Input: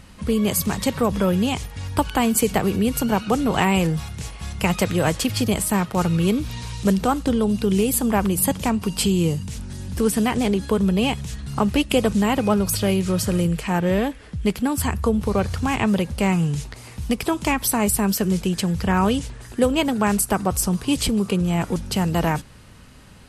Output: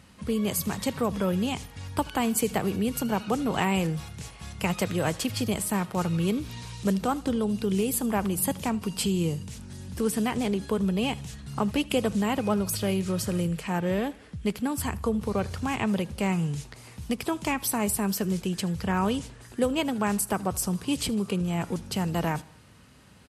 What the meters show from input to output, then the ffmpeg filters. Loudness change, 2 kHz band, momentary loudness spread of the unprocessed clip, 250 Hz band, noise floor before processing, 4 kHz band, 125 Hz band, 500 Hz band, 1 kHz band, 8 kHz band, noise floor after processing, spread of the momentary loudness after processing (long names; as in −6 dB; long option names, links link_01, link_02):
−6.5 dB, −6.5 dB, 6 LU, −6.5 dB, −43 dBFS, −6.5 dB, −7.0 dB, −6.5 dB, −6.5 dB, −6.5 dB, −50 dBFS, 6 LU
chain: -af "highpass=77,aecho=1:1:78|156|234:0.0708|0.0361|0.0184,volume=-6.5dB"